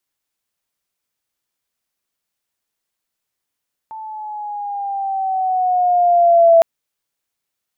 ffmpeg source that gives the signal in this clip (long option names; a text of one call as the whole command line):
ffmpeg -f lavfi -i "aevalsrc='pow(10,(-5.5+23*(t/2.71-1))/20)*sin(2*PI*884*2.71/(-5*log(2)/12)*(exp(-5*log(2)/12*t/2.71)-1))':duration=2.71:sample_rate=44100" out.wav